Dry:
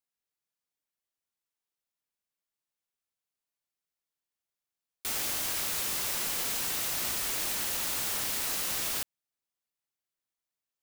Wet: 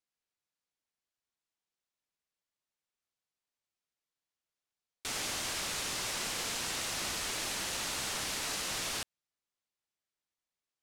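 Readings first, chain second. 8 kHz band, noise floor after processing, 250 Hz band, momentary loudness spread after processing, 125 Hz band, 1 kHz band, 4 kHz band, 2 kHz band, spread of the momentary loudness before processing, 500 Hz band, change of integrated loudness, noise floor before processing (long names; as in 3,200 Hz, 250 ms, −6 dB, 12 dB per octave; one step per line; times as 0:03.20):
−3.5 dB, below −85 dBFS, 0.0 dB, 2 LU, 0.0 dB, 0.0 dB, −0.5 dB, 0.0 dB, 2 LU, 0.0 dB, −5.0 dB, below −85 dBFS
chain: low-pass filter 7,800 Hz 12 dB per octave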